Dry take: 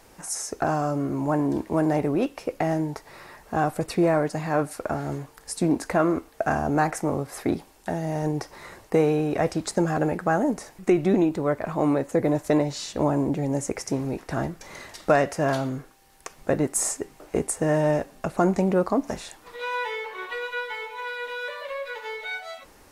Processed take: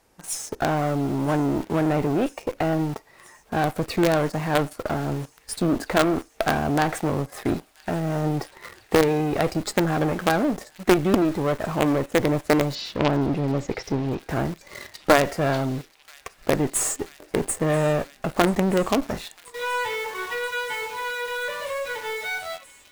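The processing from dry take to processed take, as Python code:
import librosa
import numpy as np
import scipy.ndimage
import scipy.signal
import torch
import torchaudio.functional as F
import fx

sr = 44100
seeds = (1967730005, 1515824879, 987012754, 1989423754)

p1 = fx.cheby_harmonics(x, sr, harmonics=(2, 4, 8), levels_db=(-10, -23, -21), full_scale_db=-7.5)
p2 = fx.noise_reduce_blind(p1, sr, reduce_db=8)
p3 = fx.quant_companded(p2, sr, bits=2)
p4 = p2 + F.gain(torch.from_numpy(p3), -7.5).numpy()
p5 = fx.lowpass(p4, sr, hz=5100.0, slope=24, at=(12.75, 14.29))
p6 = p5 + fx.echo_wet_highpass(p5, sr, ms=982, feedback_pct=83, hz=2500.0, wet_db=-20.5, dry=0)
y = F.gain(torch.from_numpy(p6), -1.5).numpy()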